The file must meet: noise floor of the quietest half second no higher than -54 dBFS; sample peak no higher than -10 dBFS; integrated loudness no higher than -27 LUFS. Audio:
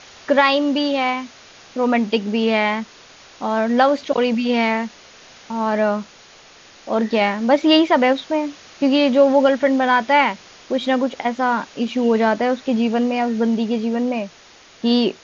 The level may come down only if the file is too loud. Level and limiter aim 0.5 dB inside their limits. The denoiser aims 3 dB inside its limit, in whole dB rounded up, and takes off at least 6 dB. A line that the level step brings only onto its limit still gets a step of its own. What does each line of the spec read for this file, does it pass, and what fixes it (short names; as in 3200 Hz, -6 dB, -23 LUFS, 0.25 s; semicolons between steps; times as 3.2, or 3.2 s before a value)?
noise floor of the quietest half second -47 dBFS: fail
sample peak -3.5 dBFS: fail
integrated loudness -18.5 LUFS: fail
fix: gain -9 dB